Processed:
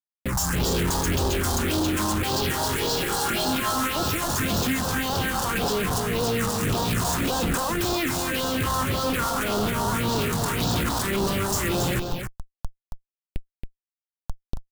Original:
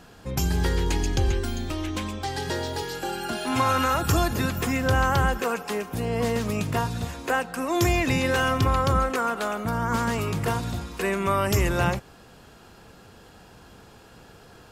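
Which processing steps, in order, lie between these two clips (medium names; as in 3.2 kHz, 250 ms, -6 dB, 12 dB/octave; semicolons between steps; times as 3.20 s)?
high-pass 250 Hz 6 dB/octave; peaking EQ 7.2 kHz +11 dB 1.5 oct; in parallel at +2.5 dB: compressor with a negative ratio -33 dBFS, ratio -1; on the sum: Schmitt trigger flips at -27 dBFS; phase shifter stages 4, 1.8 Hz, lowest notch 370–2100 Hz; on a send: delay 275 ms -6 dB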